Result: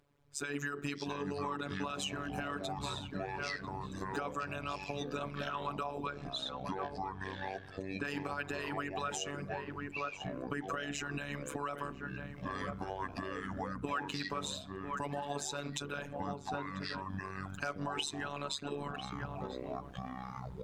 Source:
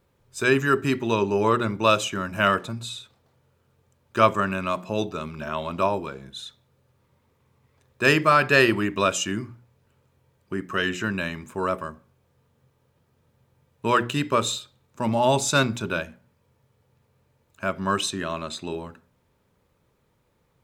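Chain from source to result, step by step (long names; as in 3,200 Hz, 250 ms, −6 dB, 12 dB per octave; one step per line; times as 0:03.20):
0:06.03–0:08.06: high-frequency loss of the air 57 metres
slap from a distant wall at 170 metres, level −17 dB
automatic gain control gain up to 12 dB
brickwall limiter −12 dBFS, peak gain reduction 11 dB
phases set to zero 143 Hz
harmonic and percussive parts rebalanced harmonic −14 dB
delay with pitch and tempo change per echo 445 ms, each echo −7 semitones, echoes 2, each echo −6 dB
downward compressor 4 to 1, threshold −40 dBFS, peak gain reduction 15 dB
high-shelf EQ 11,000 Hz −11 dB
level +4.5 dB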